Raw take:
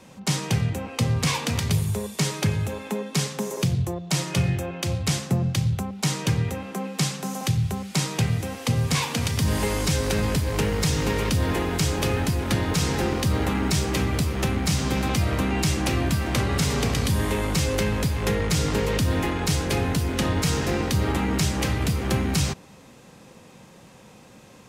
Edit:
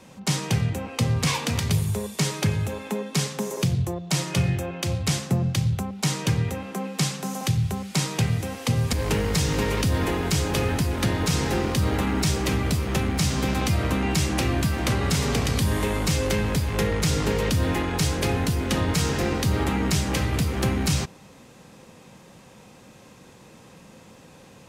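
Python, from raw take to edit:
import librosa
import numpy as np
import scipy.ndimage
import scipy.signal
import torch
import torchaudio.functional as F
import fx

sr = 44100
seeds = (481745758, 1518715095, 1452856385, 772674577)

y = fx.edit(x, sr, fx.cut(start_s=8.93, length_s=1.48), tone=tone)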